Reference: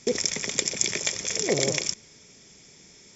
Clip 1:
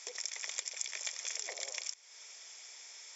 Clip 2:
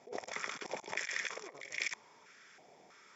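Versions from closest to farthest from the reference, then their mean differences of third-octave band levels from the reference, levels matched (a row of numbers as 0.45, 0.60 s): 2, 1; 7.5, 11.0 dB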